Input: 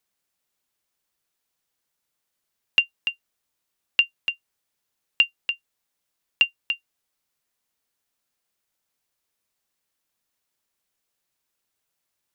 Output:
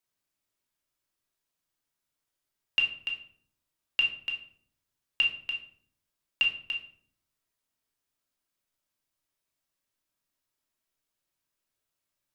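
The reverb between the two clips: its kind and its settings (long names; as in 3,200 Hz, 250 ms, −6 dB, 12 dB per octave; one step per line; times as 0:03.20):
rectangular room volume 800 cubic metres, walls furnished, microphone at 2.8 metres
level −8.5 dB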